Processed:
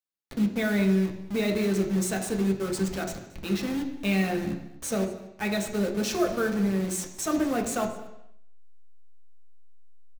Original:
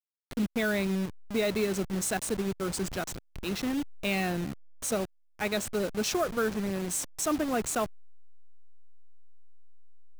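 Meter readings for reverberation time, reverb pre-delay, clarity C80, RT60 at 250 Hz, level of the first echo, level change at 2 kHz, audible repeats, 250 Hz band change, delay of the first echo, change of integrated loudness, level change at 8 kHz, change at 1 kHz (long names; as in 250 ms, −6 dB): 0.85 s, 3 ms, 10.5 dB, 0.80 s, −20.5 dB, +1.0 dB, 1, +5.5 dB, 226 ms, +3.5 dB, −1.0 dB, +0.5 dB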